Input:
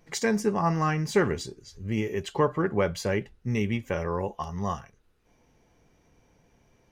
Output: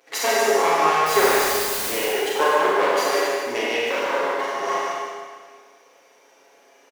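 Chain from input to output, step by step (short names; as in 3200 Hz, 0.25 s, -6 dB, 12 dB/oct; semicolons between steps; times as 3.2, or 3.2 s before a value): minimum comb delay 7.3 ms; HPF 370 Hz 24 dB/oct; in parallel at -2 dB: compressor, threshold -35 dBFS, peak gain reduction 15 dB; 1.06–1.91 on the sum: requantised 6-bit, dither triangular; on a send: loudspeakers at several distances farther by 11 m -9 dB, 50 m -6 dB; on the sum: Schroeder reverb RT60 1.7 s, combs from 32 ms, DRR -4.5 dB; gain +2 dB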